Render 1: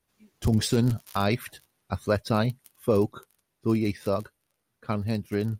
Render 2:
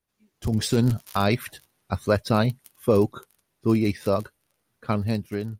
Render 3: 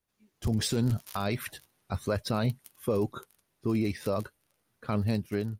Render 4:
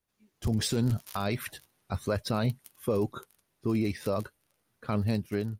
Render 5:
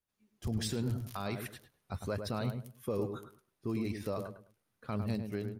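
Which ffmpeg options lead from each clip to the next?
-af "dynaudnorm=f=130:g=9:m=11.5dB,volume=-6.5dB"
-af "alimiter=limit=-18dB:level=0:latency=1:release=29,volume=-1.5dB"
-af anull
-filter_complex "[0:a]asplit=2[a][b];[b]adelay=104,lowpass=f=1.4k:p=1,volume=-6dB,asplit=2[c][d];[d]adelay=104,lowpass=f=1.4k:p=1,volume=0.27,asplit=2[e][f];[f]adelay=104,lowpass=f=1.4k:p=1,volume=0.27[g];[a][c][e][g]amix=inputs=4:normalize=0,volume=-7dB"

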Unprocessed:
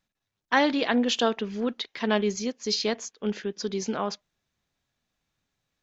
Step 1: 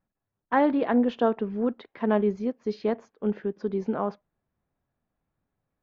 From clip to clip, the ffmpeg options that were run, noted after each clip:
-af "lowpass=1.1k,volume=2dB"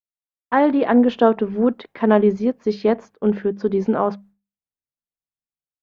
-af "agate=range=-33dB:threshold=-50dB:ratio=3:detection=peak,bandreject=f=50:t=h:w=6,bandreject=f=100:t=h:w=6,bandreject=f=150:t=h:w=6,bandreject=f=200:t=h:w=6,dynaudnorm=f=300:g=5:m=5dB,volume=4dB"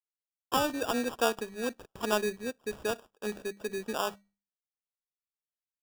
-filter_complex "[0:a]acrossover=split=1600[a][b];[b]acrusher=bits=7:mix=0:aa=0.000001[c];[a][c]amix=inputs=2:normalize=0,equalizer=f=150:w=0.43:g=-13.5,acrusher=samples=21:mix=1:aa=0.000001,volume=-8dB"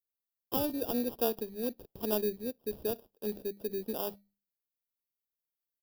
-af "firequalizer=gain_entry='entry(410,0);entry(1300,-18);entry(4500,-3);entry(7000,-17);entry(12000,7)':delay=0.05:min_phase=1"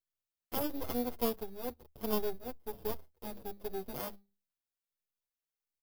-filter_complex "[0:a]aeval=exprs='max(val(0),0)':c=same,equalizer=f=78:w=5.6:g=10.5,asplit=2[a][b];[b]adelay=7,afreqshift=-1.4[c];[a][c]amix=inputs=2:normalize=1,volume=2.5dB"

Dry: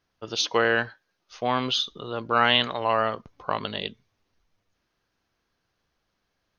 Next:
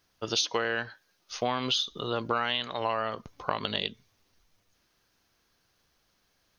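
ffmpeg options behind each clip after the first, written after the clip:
-af "highshelf=f=4.7k:g=11.5,acompressor=threshold=-27dB:ratio=10,volume=2.5dB"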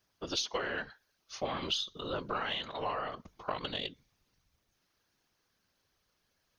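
-af "afftfilt=real='hypot(re,im)*cos(2*PI*random(0))':imag='hypot(re,im)*sin(2*PI*random(1))':win_size=512:overlap=0.75,aeval=exprs='0.106*(cos(1*acos(clip(val(0)/0.106,-1,1)))-cos(1*PI/2))+0.00119*(cos(6*acos(clip(val(0)/0.106,-1,1)))-cos(6*PI/2))':c=same"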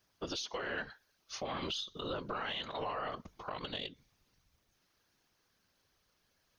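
-af "alimiter=level_in=6dB:limit=-24dB:level=0:latency=1:release=168,volume=-6dB,volume=1.5dB"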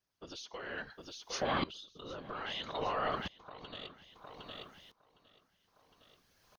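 -filter_complex "[0:a]asplit=2[a][b];[b]aecho=0:1:760|1520|2280|3040:0.282|0.113|0.0451|0.018[c];[a][c]amix=inputs=2:normalize=0,aeval=exprs='val(0)*pow(10,-20*if(lt(mod(-0.61*n/s,1),2*abs(-0.61)/1000),1-mod(-0.61*n/s,1)/(2*abs(-0.61)/1000),(mod(-0.61*n/s,1)-2*abs(-0.61)/1000)/(1-2*abs(-0.61)/1000))/20)':c=same,volume=7.5dB"

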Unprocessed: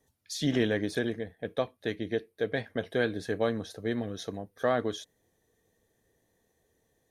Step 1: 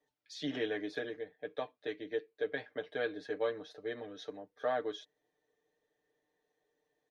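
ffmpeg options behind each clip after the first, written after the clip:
-filter_complex "[0:a]acrossover=split=280 5100:gain=0.158 1 0.0708[a][b][c];[a][b][c]amix=inputs=3:normalize=0,aecho=1:1:6.7:0.83,volume=-8dB"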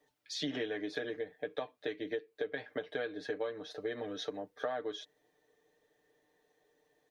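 -af "acompressor=threshold=-42dB:ratio=6,volume=8dB"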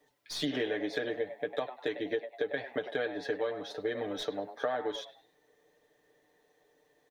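-filter_complex "[0:a]acrossover=split=3500[a][b];[a]asplit=4[c][d][e][f];[d]adelay=100,afreqshift=120,volume=-11dB[g];[e]adelay=200,afreqshift=240,volume=-20.9dB[h];[f]adelay=300,afreqshift=360,volume=-30.8dB[i];[c][g][h][i]amix=inputs=4:normalize=0[j];[b]aeval=exprs='clip(val(0),-1,0.00335)':c=same[k];[j][k]amix=inputs=2:normalize=0,volume=4dB"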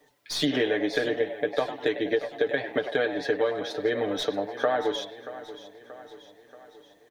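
-af "aecho=1:1:631|1262|1893|2524|3155:0.178|0.0942|0.05|0.0265|0.014,volume=7.5dB"

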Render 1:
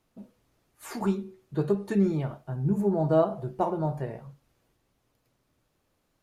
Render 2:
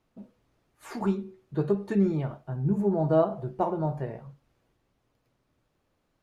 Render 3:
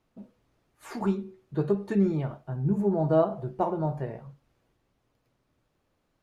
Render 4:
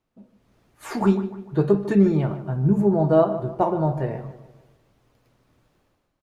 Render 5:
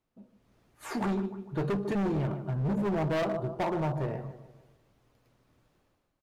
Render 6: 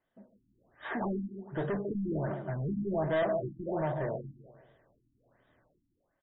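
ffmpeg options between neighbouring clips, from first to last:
-af "lowpass=f=3.7k:p=1"
-af anull
-filter_complex "[0:a]dynaudnorm=f=120:g=7:m=14dB,asplit=2[a][b];[b]adelay=150,lowpass=f=2.6k:p=1,volume=-13dB,asplit=2[c][d];[d]adelay=150,lowpass=f=2.6k:p=1,volume=0.46,asplit=2[e][f];[f]adelay=150,lowpass=f=2.6k:p=1,volume=0.46,asplit=2[g][h];[h]adelay=150,lowpass=f=2.6k:p=1,volume=0.46,asplit=2[i][j];[j]adelay=150,lowpass=f=2.6k:p=1,volume=0.46[k];[a][c][e][g][i][k]amix=inputs=6:normalize=0,volume=-4.5dB"
-af "volume=22dB,asoftclip=hard,volume=-22dB,volume=-4.5dB"
-filter_complex "[0:a]asplit=2[a][b];[b]highpass=f=720:p=1,volume=9dB,asoftclip=type=tanh:threshold=-26dB[c];[a][c]amix=inputs=2:normalize=0,lowpass=f=1.1k:p=1,volume=-6dB,superequalizer=8b=1.58:11b=2.82:13b=3.16:14b=1.58:15b=2.51,afftfilt=real='re*lt(b*sr/1024,320*pow(3900/320,0.5+0.5*sin(2*PI*1.3*pts/sr)))':imag='im*lt(b*sr/1024,320*pow(3900/320,0.5+0.5*sin(2*PI*1.3*pts/sr)))':win_size=1024:overlap=0.75"

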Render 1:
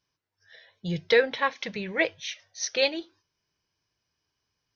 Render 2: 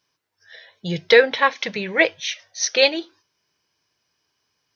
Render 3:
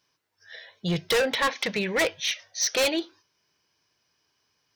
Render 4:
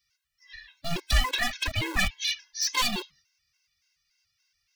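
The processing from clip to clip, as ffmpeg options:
-af "highpass=f=250:p=1,volume=8.5dB"
-af "volume=20dB,asoftclip=hard,volume=-20dB"
-filter_complex "[0:a]afftfilt=real='real(if(between(b,1,1008),(2*floor((b-1)/24)+1)*24-b,b),0)':imag='imag(if(between(b,1,1008),(2*floor((b-1)/24)+1)*24-b,b),0)*if(between(b,1,1008),-1,1)':win_size=2048:overlap=0.75,acrossover=split=120|1400|2500[a][b][c][d];[b]acrusher=bits=3:dc=4:mix=0:aa=0.000001[e];[a][e][c][d]amix=inputs=4:normalize=0,afftfilt=real='re*gt(sin(2*PI*3.5*pts/sr)*(1-2*mod(floor(b*sr/1024/280),2)),0)':imag='im*gt(sin(2*PI*3.5*pts/sr)*(1-2*mod(floor(b*sr/1024/280),2)),0)':win_size=1024:overlap=0.75,volume=3dB"

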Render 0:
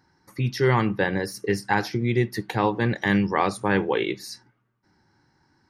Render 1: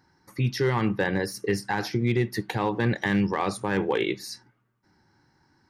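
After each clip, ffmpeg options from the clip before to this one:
-af "alimiter=limit=-13.5dB:level=0:latency=1:release=45,asoftclip=type=hard:threshold=-15dB"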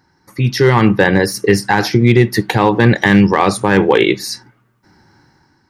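-af "dynaudnorm=f=140:g=7:m=8dB,volume=6dB"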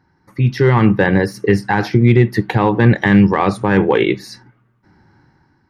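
-af "bass=f=250:g=4,treble=f=4k:g=-12,volume=-3dB"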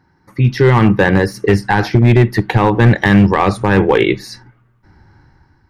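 -af "asubboost=boost=6:cutoff=80,asoftclip=type=hard:threshold=-6dB,volume=3dB"

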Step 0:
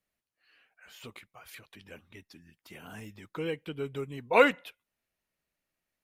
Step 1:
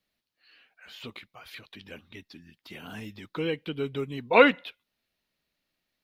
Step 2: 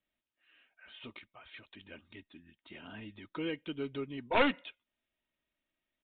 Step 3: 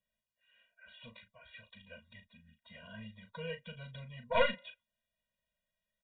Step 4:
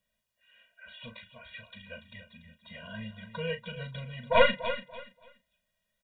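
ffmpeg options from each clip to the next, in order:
-filter_complex "[0:a]equalizer=f=250:t=o:w=1:g=4,equalizer=f=4k:t=o:w=1:g=10,equalizer=f=8k:t=o:w=1:g=-6,acrossover=split=3700[a][b];[b]acompressor=threshold=-53dB:ratio=4:attack=1:release=60[c];[a][c]amix=inputs=2:normalize=0,volume=2.5dB"
-af "aecho=1:1:3.2:0.37,aresample=8000,aeval=exprs='clip(val(0),-1,0.0841)':c=same,aresample=44100,volume=-6.5dB"
-filter_complex "[0:a]asplit=2[a][b];[b]adelay=37,volume=-9dB[c];[a][c]amix=inputs=2:normalize=0,afftfilt=real='re*eq(mod(floor(b*sr/1024/230),2),0)':imag='im*eq(mod(floor(b*sr/1024/230),2),0)':win_size=1024:overlap=0.75"
-af "aecho=1:1:288|576|864:0.251|0.0603|0.0145,volume=7.5dB"

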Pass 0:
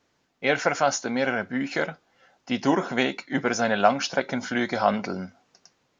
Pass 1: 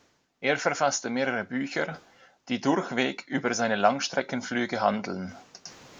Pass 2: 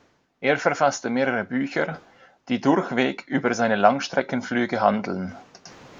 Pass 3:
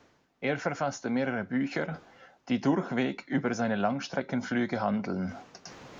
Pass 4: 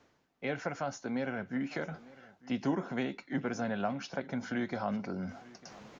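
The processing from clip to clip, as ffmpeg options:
-af "equalizer=f=6.3k:t=o:w=0.77:g=2.5,areverse,acompressor=mode=upward:threshold=-29dB:ratio=2.5,areverse,volume=-2.5dB"
-af "highshelf=f=3.8k:g=-11.5,volume=5.5dB"
-filter_complex "[0:a]acrossover=split=260[a][b];[b]acompressor=threshold=-33dB:ratio=2[c];[a][c]amix=inputs=2:normalize=0,volume=-2dB"
-af "aecho=1:1:900:0.0891,volume=-5.5dB"

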